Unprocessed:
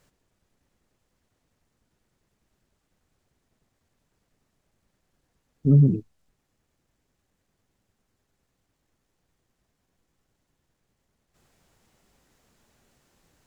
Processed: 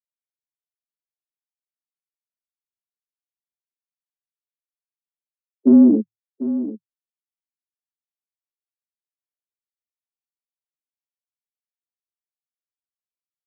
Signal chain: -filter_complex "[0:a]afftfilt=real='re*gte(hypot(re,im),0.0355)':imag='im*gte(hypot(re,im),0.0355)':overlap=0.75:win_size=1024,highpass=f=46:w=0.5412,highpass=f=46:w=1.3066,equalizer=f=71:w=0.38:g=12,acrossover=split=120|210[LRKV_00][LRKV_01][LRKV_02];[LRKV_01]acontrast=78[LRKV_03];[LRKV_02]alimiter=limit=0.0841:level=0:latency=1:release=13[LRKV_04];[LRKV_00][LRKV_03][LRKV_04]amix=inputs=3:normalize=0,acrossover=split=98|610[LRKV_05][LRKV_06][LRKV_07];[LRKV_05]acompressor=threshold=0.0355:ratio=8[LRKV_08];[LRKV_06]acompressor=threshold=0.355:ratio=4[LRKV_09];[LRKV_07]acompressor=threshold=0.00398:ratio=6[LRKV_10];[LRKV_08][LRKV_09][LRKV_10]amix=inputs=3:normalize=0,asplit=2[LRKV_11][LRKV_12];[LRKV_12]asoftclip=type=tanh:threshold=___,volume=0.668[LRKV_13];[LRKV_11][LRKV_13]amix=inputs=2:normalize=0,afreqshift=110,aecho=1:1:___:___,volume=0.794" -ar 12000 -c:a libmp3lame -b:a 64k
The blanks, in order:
0.2, 745, 0.237